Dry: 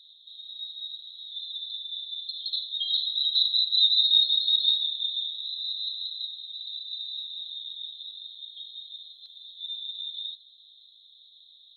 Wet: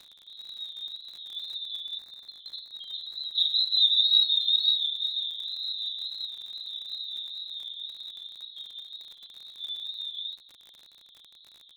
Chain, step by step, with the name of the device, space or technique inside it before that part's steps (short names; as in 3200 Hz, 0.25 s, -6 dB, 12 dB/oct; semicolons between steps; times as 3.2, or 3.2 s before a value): lo-fi chain (LPF 3100 Hz 12 dB/oct; wow and flutter; crackle 49/s -43 dBFS); 1.98–3.38 EQ curve 2000 Hz 0 dB, 3100 Hz -16 dB, 4500 Hz -4 dB; gain +4.5 dB